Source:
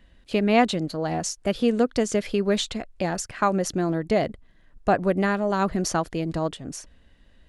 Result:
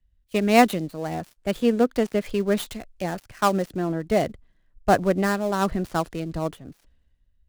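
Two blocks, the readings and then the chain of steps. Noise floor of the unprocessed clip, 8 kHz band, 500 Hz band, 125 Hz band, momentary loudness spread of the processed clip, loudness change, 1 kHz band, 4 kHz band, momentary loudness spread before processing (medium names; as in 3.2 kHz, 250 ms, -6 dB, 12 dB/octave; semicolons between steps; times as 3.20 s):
-57 dBFS, -5.5 dB, +0.5 dB, -0.5 dB, 12 LU, +0.5 dB, +1.5 dB, -2.5 dB, 8 LU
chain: dead-time distortion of 0.081 ms; three bands expanded up and down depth 70%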